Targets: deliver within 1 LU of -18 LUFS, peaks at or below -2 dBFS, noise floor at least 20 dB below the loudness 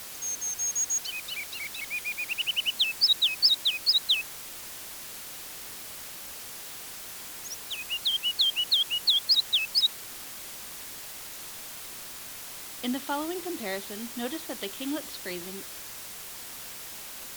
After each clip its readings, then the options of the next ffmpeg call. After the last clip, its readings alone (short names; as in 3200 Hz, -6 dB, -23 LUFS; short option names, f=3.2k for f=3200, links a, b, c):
noise floor -42 dBFS; noise floor target -49 dBFS; loudness -28.5 LUFS; peak -11.5 dBFS; loudness target -18.0 LUFS
-> -af "afftdn=nr=7:nf=-42"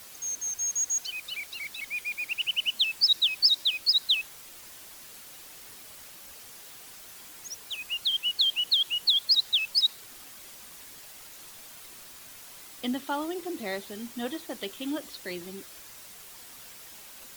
noise floor -48 dBFS; loudness -26.0 LUFS; peak -11.5 dBFS; loudness target -18.0 LUFS
-> -af "volume=8dB"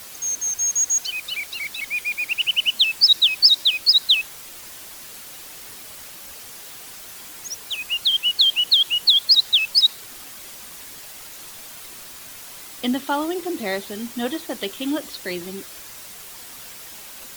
loudness -18.0 LUFS; peak -3.5 dBFS; noise floor -40 dBFS